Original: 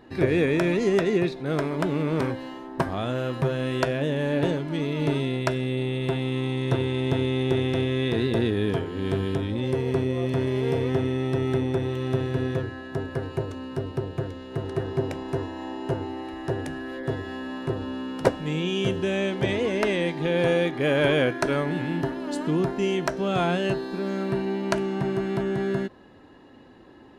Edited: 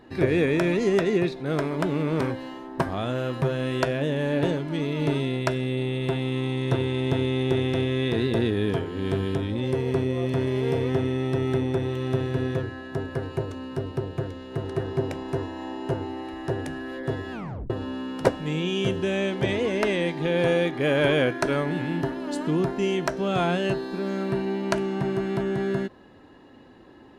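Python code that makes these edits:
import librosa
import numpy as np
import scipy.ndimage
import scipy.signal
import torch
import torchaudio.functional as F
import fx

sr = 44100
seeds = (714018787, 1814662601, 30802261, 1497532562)

y = fx.edit(x, sr, fx.tape_stop(start_s=17.32, length_s=0.38), tone=tone)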